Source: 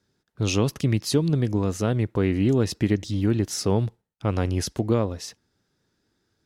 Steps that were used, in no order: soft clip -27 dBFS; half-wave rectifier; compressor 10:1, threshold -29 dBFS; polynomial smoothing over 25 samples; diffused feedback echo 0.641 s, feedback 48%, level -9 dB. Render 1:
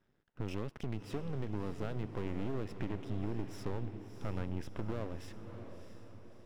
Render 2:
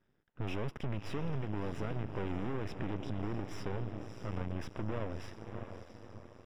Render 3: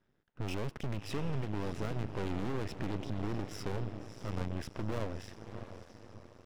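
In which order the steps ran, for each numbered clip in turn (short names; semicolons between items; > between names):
compressor > soft clip > polynomial smoothing > half-wave rectifier > diffused feedback echo; soft clip > diffused feedback echo > compressor > half-wave rectifier > polynomial smoothing; polynomial smoothing > soft clip > compressor > diffused feedback echo > half-wave rectifier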